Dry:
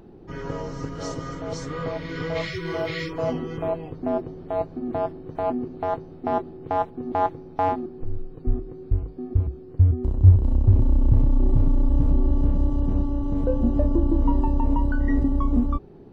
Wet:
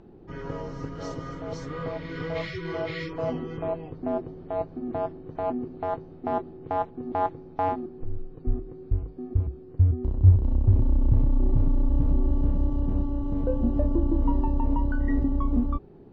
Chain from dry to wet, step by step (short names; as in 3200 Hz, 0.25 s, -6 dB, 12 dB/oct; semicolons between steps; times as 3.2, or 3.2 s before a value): air absorption 100 m; gain -3 dB